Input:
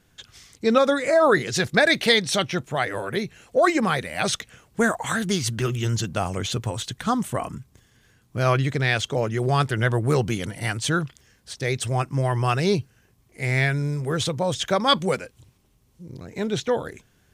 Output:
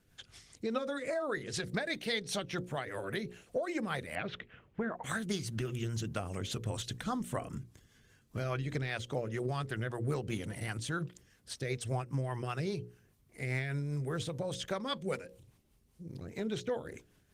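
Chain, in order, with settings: 4.15–5.04 LPF 2900 Hz 24 dB/oct; 8.65–9.13 de-esser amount 55%; notches 60/120/180/240/300/360/420/480/540 Hz; compressor 4:1, threshold -28 dBFS, peak gain reduction 13 dB; rotary speaker horn 5 Hz; gain -3 dB; Opus 24 kbps 48000 Hz

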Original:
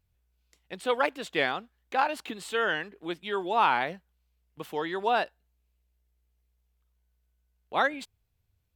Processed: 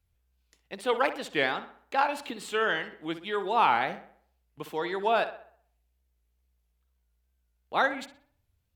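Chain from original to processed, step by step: wow and flutter 90 cents; tape echo 62 ms, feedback 49%, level -11 dB, low-pass 3100 Hz

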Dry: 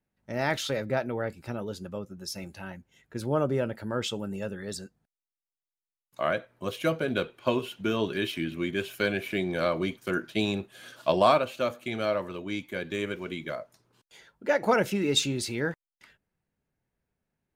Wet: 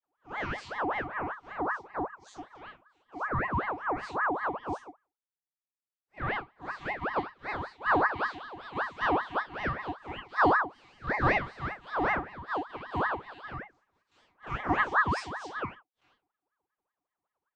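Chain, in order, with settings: time blur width 81 ms; vocoder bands 32, saw 216 Hz; ring modulator with a swept carrier 1000 Hz, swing 50%, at 5.2 Hz; gain +3.5 dB

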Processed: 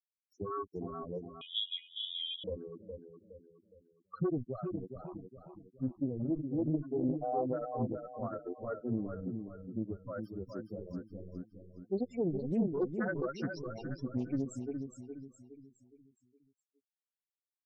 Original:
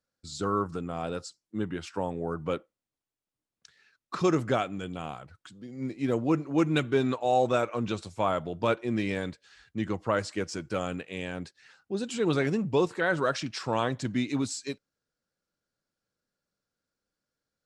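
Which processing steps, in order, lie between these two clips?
limiter -23 dBFS, peak gain reduction 10 dB; bit-crush 5-bit; loudest bins only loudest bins 4; on a send: feedback echo 0.415 s, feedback 40%, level -6.5 dB; 1.41–2.44 on the sum: inverted band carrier 3600 Hz; Doppler distortion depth 0.32 ms

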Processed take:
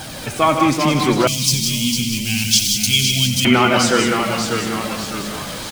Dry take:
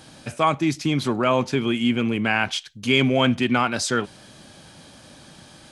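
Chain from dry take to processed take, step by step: zero-crossing step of -32 dBFS; tapped delay 92/155/184/271 ms -11/-9.5/-7.5/-19.5 dB; flange 0.37 Hz, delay 1.2 ms, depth 5.1 ms, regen +44%; echoes that change speed 0.362 s, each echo -1 st, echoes 3, each echo -6 dB; 1.27–3.45 EQ curve 170 Hz 0 dB, 430 Hz -26 dB, 1400 Hz -27 dB, 2400 Hz -5 dB, 5300 Hz +14 dB; gain +8 dB

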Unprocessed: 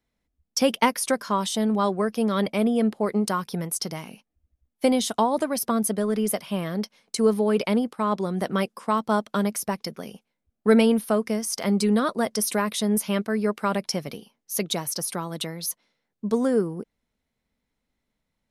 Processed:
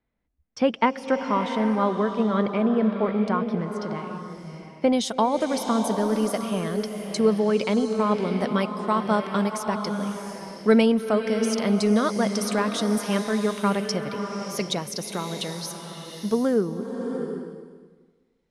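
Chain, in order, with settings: LPF 2300 Hz 12 dB/oct, from 4.93 s 7000 Hz; bloom reverb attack 0.72 s, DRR 5.5 dB

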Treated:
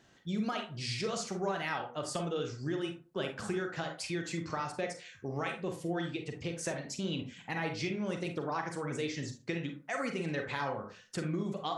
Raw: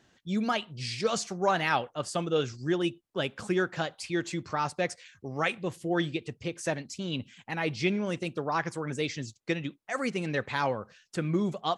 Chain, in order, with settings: compressor, threshold -33 dBFS, peak gain reduction 12 dB; on a send: reverb RT60 0.35 s, pre-delay 32 ms, DRR 3.5 dB

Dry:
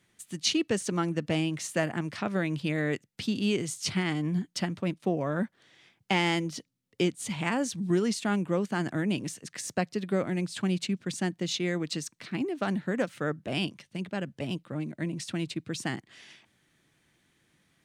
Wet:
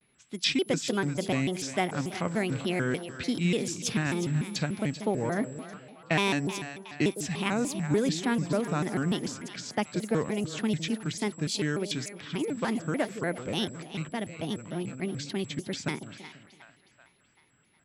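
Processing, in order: split-band echo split 700 Hz, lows 0.167 s, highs 0.376 s, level -11.5 dB; whine 9100 Hz -51 dBFS; low-pass opened by the level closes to 2900 Hz, open at -27.5 dBFS; shaped vibrato square 3.4 Hz, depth 250 cents

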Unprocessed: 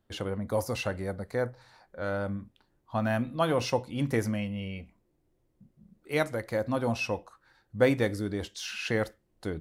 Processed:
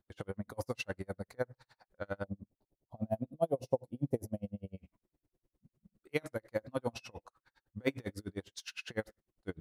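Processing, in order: 2.24–4.78 EQ curve 310 Hz 0 dB, 670 Hz +4 dB, 1400 Hz -23 dB, 6300 Hz -11 dB, 12000 Hz -2 dB; dB-linear tremolo 9.9 Hz, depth 39 dB; gain -2 dB

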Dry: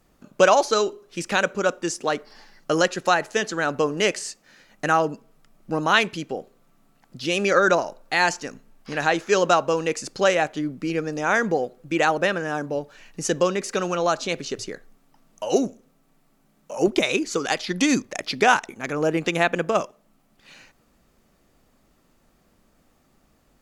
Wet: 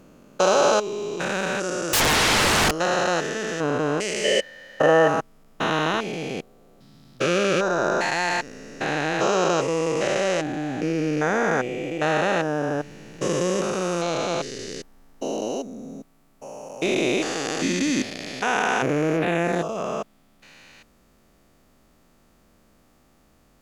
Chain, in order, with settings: stepped spectrum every 0.4 s; 1.93–2.71 sine folder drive 20 dB, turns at -20.5 dBFS; 4.24–5.08 small resonant body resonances 540/1800/3000 Hz, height 17 dB, ringing for 35 ms; 19.16–19.76 bell 8300 Hz -> 1500 Hz -14.5 dB 0.66 oct; gain +4.5 dB

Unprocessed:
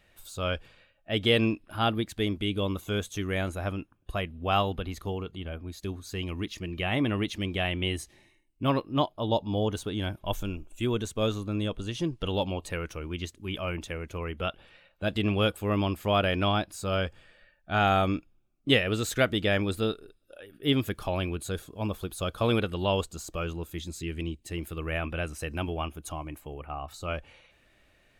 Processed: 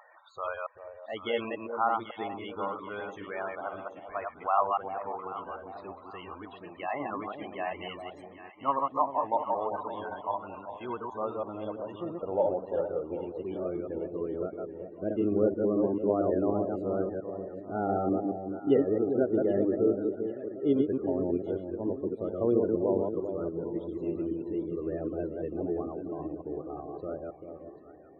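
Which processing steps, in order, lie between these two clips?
reverse delay 0.111 s, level -2.5 dB; 18.74–19.57 LPF 1900 Hz 6 dB/oct; in parallel at -3 dB: upward compressor, threshold -26 dBFS; on the sum: band-pass sweep 990 Hz -> 370 Hz, 10.98–13.95; loudest bins only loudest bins 32; on a send: echo with dull and thin repeats by turns 0.393 s, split 810 Hz, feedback 61%, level -7.5 dB

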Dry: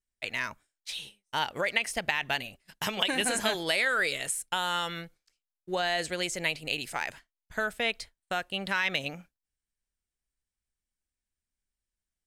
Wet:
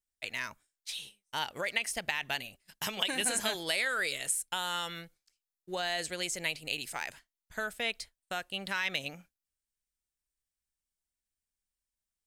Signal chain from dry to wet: high shelf 4000 Hz +8 dB; gain -6 dB

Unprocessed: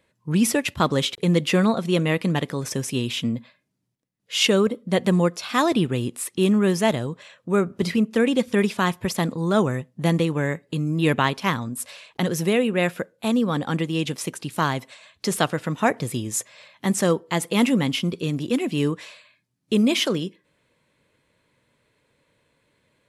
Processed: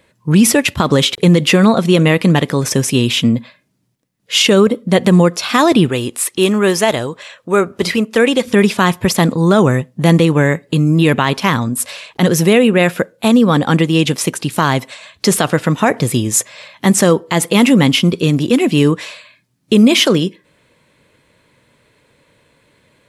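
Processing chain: 5.89–8.45 bell 160 Hz -10.5 dB 1.8 oct; maximiser +13 dB; gain -1 dB

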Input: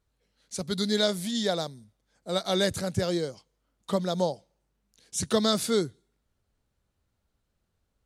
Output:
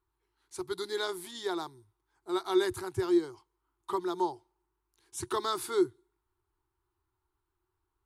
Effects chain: EQ curve 120 Hz 0 dB, 210 Hz -21 dB, 360 Hz +15 dB, 540 Hz -18 dB, 920 Hz +13 dB, 1800 Hz +1 dB, 6200 Hz -6 dB, 11000 Hz +3 dB; gain -7 dB

